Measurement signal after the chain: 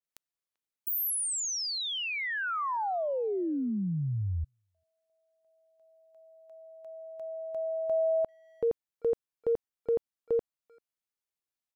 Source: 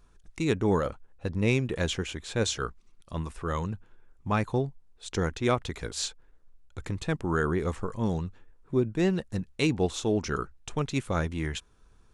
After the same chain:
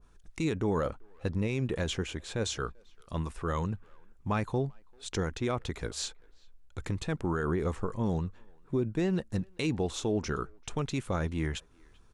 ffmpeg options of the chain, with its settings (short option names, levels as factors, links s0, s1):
-filter_complex "[0:a]alimiter=limit=0.0944:level=0:latency=1:release=44,asplit=2[s0][s1];[s1]adelay=390,highpass=300,lowpass=3400,asoftclip=type=hard:threshold=0.0316,volume=0.0447[s2];[s0][s2]amix=inputs=2:normalize=0,adynamicequalizer=threshold=0.00447:dfrequency=1600:dqfactor=0.7:tfrequency=1600:tqfactor=0.7:attack=5:release=100:ratio=0.375:range=2:mode=cutabove:tftype=highshelf"